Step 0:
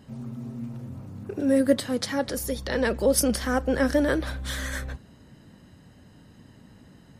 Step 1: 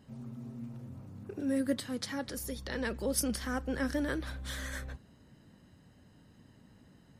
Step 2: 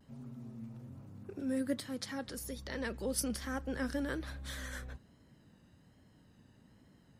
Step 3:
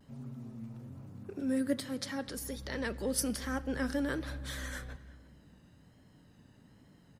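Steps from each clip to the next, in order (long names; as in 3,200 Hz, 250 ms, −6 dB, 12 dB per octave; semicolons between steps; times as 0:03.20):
dynamic equaliser 590 Hz, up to −6 dB, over −37 dBFS, Q 1.4; level −8 dB
pitch vibrato 1.2 Hz 59 cents; level −3.5 dB
far-end echo of a speakerphone 350 ms, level −21 dB; rectangular room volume 2,900 cubic metres, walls mixed, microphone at 0.33 metres; level +2.5 dB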